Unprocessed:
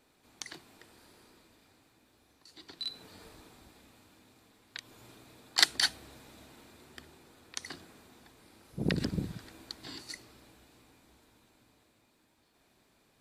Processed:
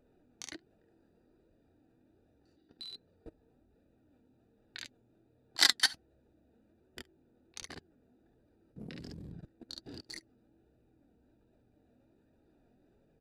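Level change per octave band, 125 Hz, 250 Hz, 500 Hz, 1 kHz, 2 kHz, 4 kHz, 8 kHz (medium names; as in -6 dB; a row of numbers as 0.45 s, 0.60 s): -12.0 dB, -10.5 dB, -8.5 dB, -2.0 dB, -0.5 dB, -0.5 dB, -0.5 dB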